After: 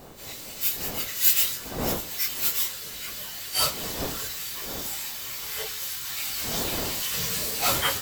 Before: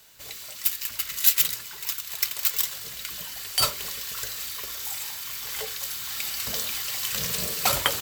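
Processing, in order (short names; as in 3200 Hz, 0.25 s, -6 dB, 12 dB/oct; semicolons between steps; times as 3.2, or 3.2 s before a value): phase scrambler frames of 0.1 s; wind noise 610 Hz -40 dBFS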